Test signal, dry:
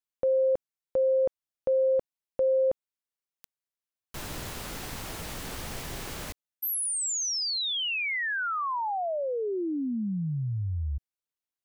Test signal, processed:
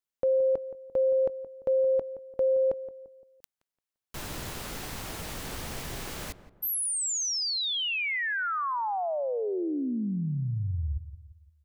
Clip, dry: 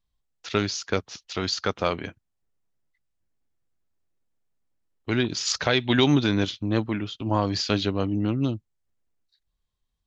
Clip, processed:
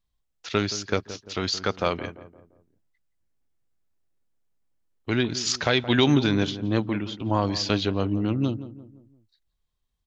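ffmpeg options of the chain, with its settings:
-filter_complex "[0:a]asplit=2[a][b];[b]adelay=172,lowpass=f=1.1k:p=1,volume=-13dB,asplit=2[c][d];[d]adelay=172,lowpass=f=1.1k:p=1,volume=0.45,asplit=2[e][f];[f]adelay=172,lowpass=f=1.1k:p=1,volume=0.45,asplit=2[g][h];[h]adelay=172,lowpass=f=1.1k:p=1,volume=0.45[i];[a][c][e][g][i]amix=inputs=5:normalize=0"

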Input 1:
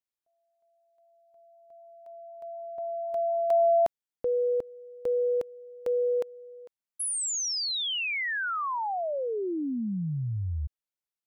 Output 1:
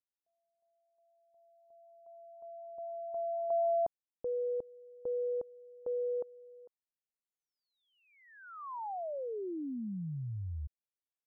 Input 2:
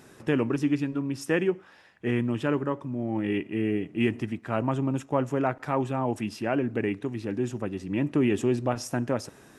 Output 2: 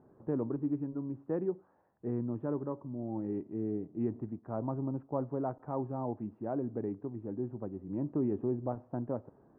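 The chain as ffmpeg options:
-af "lowpass=f=1k:w=0.5412,lowpass=f=1k:w=1.3066,volume=-8dB"

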